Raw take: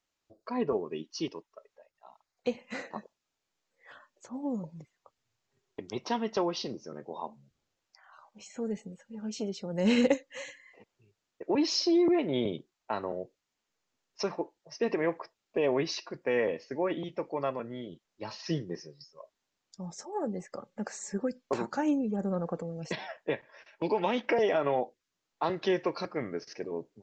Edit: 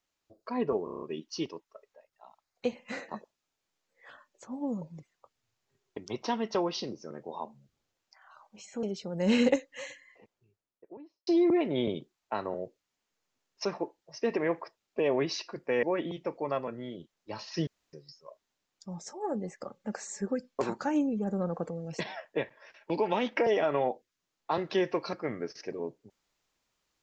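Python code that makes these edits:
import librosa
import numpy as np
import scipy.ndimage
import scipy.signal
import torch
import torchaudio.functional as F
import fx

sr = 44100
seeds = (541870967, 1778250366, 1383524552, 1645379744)

y = fx.studio_fade_out(x, sr, start_s=10.41, length_s=1.44)
y = fx.edit(y, sr, fx.stutter(start_s=0.84, slice_s=0.03, count=7),
    fx.cut(start_s=8.65, length_s=0.76),
    fx.cut(start_s=16.41, length_s=0.34),
    fx.room_tone_fill(start_s=18.59, length_s=0.26), tone=tone)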